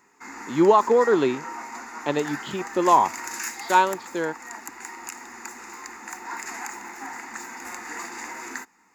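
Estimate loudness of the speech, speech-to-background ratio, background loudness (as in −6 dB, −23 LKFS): −22.0 LKFS, 13.5 dB, −35.5 LKFS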